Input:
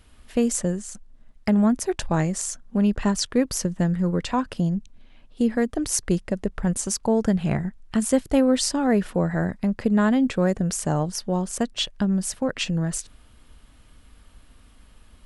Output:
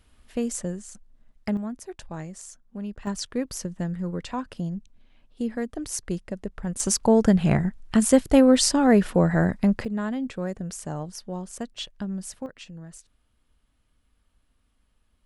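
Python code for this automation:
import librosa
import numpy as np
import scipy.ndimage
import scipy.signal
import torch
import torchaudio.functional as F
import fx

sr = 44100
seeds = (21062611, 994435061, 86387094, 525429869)

y = fx.gain(x, sr, db=fx.steps((0.0, -6.0), (1.57, -13.5), (3.07, -7.0), (6.8, 3.0), (9.85, -9.0), (12.46, -17.0)))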